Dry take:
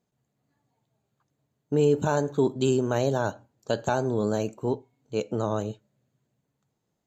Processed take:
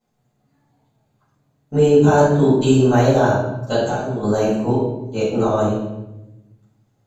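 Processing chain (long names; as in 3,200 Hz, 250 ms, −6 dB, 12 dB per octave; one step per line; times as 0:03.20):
0:03.81–0:04.23: downward compressor 4 to 1, threshold −32 dBFS, peak gain reduction 10.5 dB
rectangular room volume 370 cubic metres, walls mixed, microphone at 6.8 metres
level −5.5 dB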